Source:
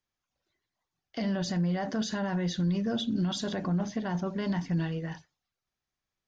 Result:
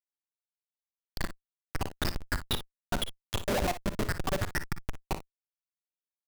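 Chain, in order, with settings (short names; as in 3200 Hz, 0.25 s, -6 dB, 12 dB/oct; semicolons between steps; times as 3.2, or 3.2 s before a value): random spectral dropouts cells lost 79%; bell 110 Hz +12 dB 1.2 oct; in parallel at +2 dB: limiter -25 dBFS, peak gain reduction 9 dB; on the sum: AGC gain up to 15 dB; high-pass sweep 1400 Hz -> 540 Hz, 2.58–3.51; Schmitt trigger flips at -19.5 dBFS; on a send: early reflections 46 ms -17 dB, 58 ms -12 dB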